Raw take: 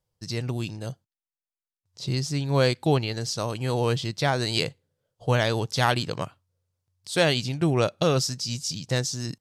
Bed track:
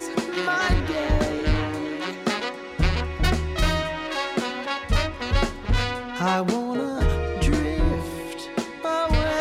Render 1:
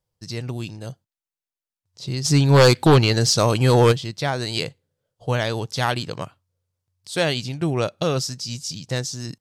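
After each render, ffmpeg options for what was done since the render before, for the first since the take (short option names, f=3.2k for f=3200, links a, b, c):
-filter_complex "[0:a]asplit=3[a][b][c];[a]afade=t=out:st=2.24:d=0.02[d];[b]aeval=exprs='0.473*sin(PI/2*2.51*val(0)/0.473)':c=same,afade=t=in:st=2.24:d=0.02,afade=t=out:st=3.91:d=0.02[e];[c]afade=t=in:st=3.91:d=0.02[f];[d][e][f]amix=inputs=3:normalize=0"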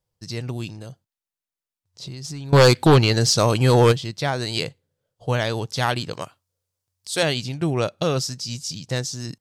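-filter_complex "[0:a]asettb=1/sr,asplit=3[a][b][c];[a]atrim=end=0.704[d];[b]atrim=start=0.7:end=2.53,asetpts=PTS-STARTPTS,afade=t=in:d=0.004:c=qsin,afade=t=out:st=1.826:d=0.004:c=qsin,acompressor=threshold=-31dB:ratio=6:attack=3.2:release=140:knee=1:detection=peak[e];[c]atrim=start=2.526[f];[d][e]acrossfade=d=0.004:c1=hsin:c2=qsin[g];[g][f]acrossfade=d=0.004:c1=qsin:c2=hsin,asettb=1/sr,asplit=3[h][i][j];[h]atrim=end=6.134[k];[i]atrim=start=6.13:end=7.23,asetpts=PTS-STARTPTS,afade=t=in:d=0.004:c=qsin,afade=t=out:st=1.096:d=0.004:c=qsin,bass=f=250:g=-7,treble=f=4k:g=6[l];[j]atrim=start=7.226[m];[k][l]acrossfade=d=0.004:c1=hsin:c2=qsin[n];[n][m]acrossfade=d=0.004:c1=qsin:c2=hsin"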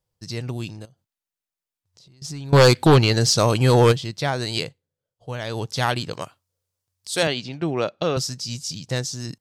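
-filter_complex "[0:a]asettb=1/sr,asplit=3[a][b][c];[a]atrim=end=0.854[d];[b]atrim=start=0.85:end=2.22,asetpts=PTS-STARTPTS,afade=t=in:d=0.004:c=qsin,afade=t=out:st=1.366:d=0.004:c=qsin,acompressor=threshold=-49dB:ratio=12:attack=3.2:release=140:knee=1:detection=peak[e];[c]atrim=start=2.216[f];[d][e]acrossfade=d=0.004:c1=hsin:c2=qsin[g];[g][f]acrossfade=d=0.004:c1=qsin:c2=hsin,asettb=1/sr,asplit=3[h][i][j];[h]atrim=end=7.274[k];[i]atrim=start=7.27:end=8.17,asetpts=PTS-STARTPTS,afade=t=in:d=0.004:c=qsin,afade=t=out:st=0.896:d=0.004:c=qsin,highpass=180,lowpass=4.3k[l];[j]atrim=start=8.166[m];[k][l]acrossfade=d=0.004:c1=hsin:c2=qsin[n];[n][m]acrossfade=d=0.004:c1=qsin:c2=hsin,asplit=3[o][p][q];[o]atrim=end=4.87,asetpts=PTS-STARTPTS,afade=t=out:st=4.58:d=0.29:c=qua:silence=0.354813[r];[p]atrim=start=4.87:end=5.32,asetpts=PTS-STARTPTS,volume=-9dB[s];[q]atrim=start=5.32,asetpts=PTS-STARTPTS,afade=t=in:d=0.29:c=qua:silence=0.354813[t];[r][s][t]concat=n=3:v=0:a=1"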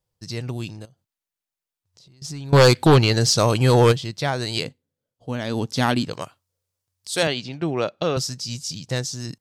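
-filter_complex "[0:a]asettb=1/sr,asplit=3[a][b][c];[a]atrim=end=4.654[d];[b]atrim=start=4.65:end=6.05,asetpts=PTS-STARTPTS,afade=t=in:d=0.004:c=qsin,afade=t=out:st=1.396:d=0.004:c=qsin,equalizer=f=250:w=2.3:g=12.5[e];[c]atrim=start=6.046[f];[d][e]acrossfade=d=0.004:c1=hsin:c2=qsin[g];[g][f]acrossfade=d=0.004:c1=qsin:c2=hsin"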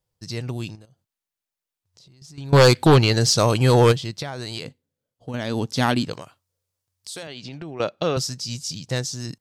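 -filter_complex "[0:a]asettb=1/sr,asplit=3[a][b][c];[a]atrim=end=0.754[d];[b]atrim=start=0.75:end=2.38,asetpts=PTS-STARTPTS,afade=t=in:d=0.004:c=qsin,afade=t=out:st=1.626:d=0.004:c=qsin,acompressor=threshold=-44dB:ratio=4:attack=3.2:release=140:knee=1:detection=peak[e];[c]atrim=start=2.376[f];[d][e]acrossfade=d=0.004:c1=hsin:c2=qsin[g];[g][f]acrossfade=d=0.004:c1=qsin:c2=hsin,asettb=1/sr,asplit=3[h][i][j];[h]atrim=end=4.224[k];[i]atrim=start=4.22:end=5.34,asetpts=PTS-STARTPTS,afade=t=in:d=0.004:c=qsin,afade=t=out:st=1.116:d=0.004:c=qsin,acompressor=threshold=-26dB:ratio=6:attack=3.2:release=140:knee=1:detection=peak[l];[j]atrim=start=5.336[m];[k][l]acrossfade=d=0.004:c1=hsin:c2=qsin[n];[n][m]acrossfade=d=0.004:c1=qsin:c2=hsin,asettb=1/sr,asplit=3[o][p][q];[o]atrim=end=6.164[r];[p]atrim=start=6.16:end=7.8,asetpts=PTS-STARTPTS,afade=t=in:d=0.004:c=qsin,afade=t=out:st=1.636:d=0.004:c=qsin,acompressor=threshold=-31dB:ratio=10:attack=3.2:release=140:knee=1:detection=peak[s];[q]atrim=start=7.796[t];[r][s]acrossfade=d=0.004:c1=hsin:c2=qsin[u];[u][t]acrossfade=d=0.004:c1=qsin:c2=hsin"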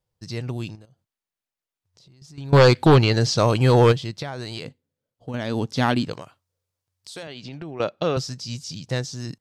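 -filter_complex "[0:a]highshelf=f=4.7k:g=-6,acrossover=split=6400[a][b];[b]acompressor=threshold=-44dB:ratio=4:attack=1:release=60[c];[a][c]amix=inputs=2:normalize=0"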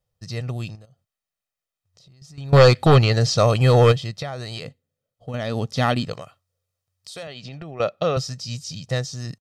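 -af "aecho=1:1:1.6:0.51"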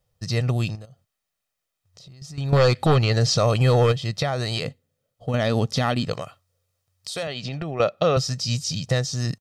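-filter_complex "[0:a]asplit=2[a][b];[b]acompressor=threshold=-23dB:ratio=6,volume=0.5dB[c];[a][c]amix=inputs=2:normalize=0,alimiter=limit=-9.5dB:level=0:latency=1:release=295"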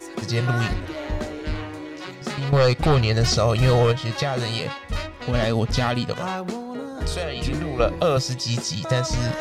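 -filter_complex "[1:a]volume=-6dB[a];[0:a][a]amix=inputs=2:normalize=0"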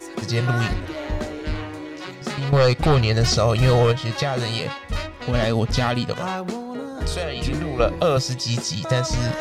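-af "volume=1dB"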